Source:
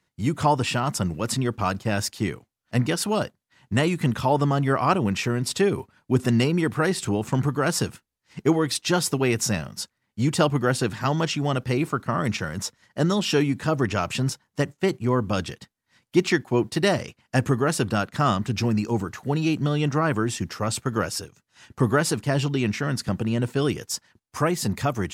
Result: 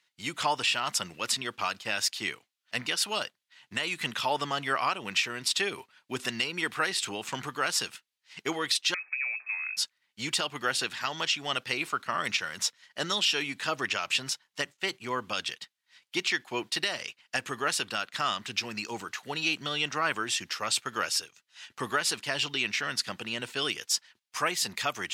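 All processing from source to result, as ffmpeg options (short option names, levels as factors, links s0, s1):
-filter_complex "[0:a]asettb=1/sr,asplit=3[s0][s1][s2];[s0]atrim=end=8.944[s3];[s1]atrim=start=8.94:end=9.77,asetpts=PTS-STARTPTS,afade=t=in:d=0.004:c=qsin,afade=t=out:st=0.826:d=0.004:c=qsin,acompressor=threshold=0.0251:ratio=16:attack=3.2:release=140:knee=1:detection=peak,lowpass=f=2300:t=q:w=0.5098,lowpass=f=2300:t=q:w=0.6013,lowpass=f=2300:t=q:w=0.9,lowpass=f=2300:t=q:w=2.563,afreqshift=-2700[s4];[s2]atrim=start=9.766[s5];[s3][s4]acrossfade=d=0.004:c1=hsin:c2=qsin[s6];[s6][s5]acrossfade=d=0.004:c1=qsin:c2=hsin,highpass=f=1200:p=1,equalizer=f=3200:w=0.71:g=10,alimiter=limit=0.237:level=0:latency=1:release=217,volume=0.75"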